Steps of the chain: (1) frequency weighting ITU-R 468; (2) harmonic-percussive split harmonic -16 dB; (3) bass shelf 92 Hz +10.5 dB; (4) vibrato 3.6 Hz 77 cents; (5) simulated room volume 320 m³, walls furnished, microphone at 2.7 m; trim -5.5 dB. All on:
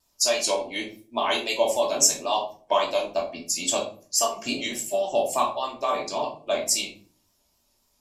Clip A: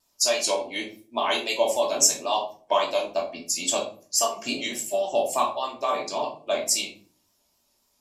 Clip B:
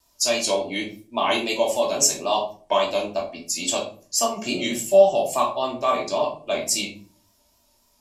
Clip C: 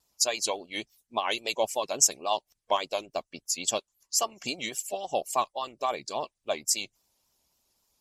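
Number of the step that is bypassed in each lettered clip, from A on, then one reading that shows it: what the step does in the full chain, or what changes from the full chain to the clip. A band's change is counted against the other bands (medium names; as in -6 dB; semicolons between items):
3, 125 Hz band -3.0 dB; 2, 125 Hz band +5.0 dB; 5, momentary loudness spread change +2 LU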